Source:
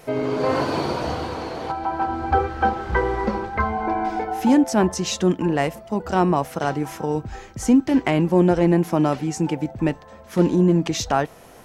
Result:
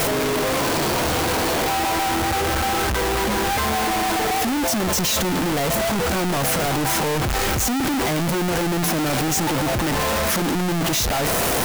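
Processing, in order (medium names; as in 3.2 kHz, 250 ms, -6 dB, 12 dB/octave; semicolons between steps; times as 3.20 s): one-bit comparator; treble shelf 11 kHz +3.5 dB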